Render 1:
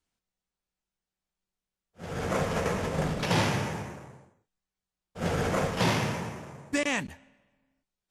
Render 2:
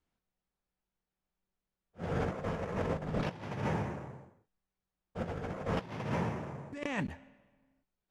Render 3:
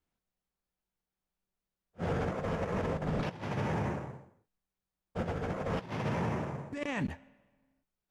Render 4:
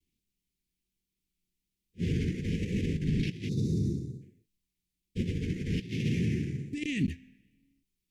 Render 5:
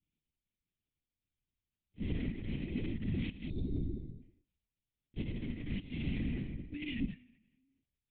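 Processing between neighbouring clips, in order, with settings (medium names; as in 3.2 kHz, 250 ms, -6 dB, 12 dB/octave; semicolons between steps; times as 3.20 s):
low-pass 1.5 kHz 6 dB/octave; compressor with a negative ratio -33 dBFS, ratio -0.5; trim -1.5 dB
peak limiter -30.5 dBFS, peak gain reduction 10 dB; upward expansion 1.5:1, over -54 dBFS; trim +7 dB
inverse Chebyshev band-stop 620–1300 Hz, stop band 50 dB; vibrato 1.2 Hz 57 cents; time-frequency box 3.49–4.22 s, 550–3500 Hz -26 dB; trim +5.5 dB
LPC vocoder at 8 kHz whisper; trim -6.5 dB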